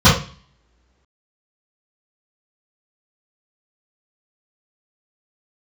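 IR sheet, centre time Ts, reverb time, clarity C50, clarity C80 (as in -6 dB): 34 ms, no single decay rate, 5.0 dB, 11.5 dB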